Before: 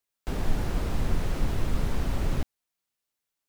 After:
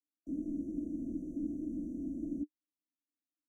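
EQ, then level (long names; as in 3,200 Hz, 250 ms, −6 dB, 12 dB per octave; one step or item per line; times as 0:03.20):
formant filter u
linear-phase brick-wall band-stop 670–5,700 Hz
phaser with its sweep stopped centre 620 Hz, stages 8
+8.5 dB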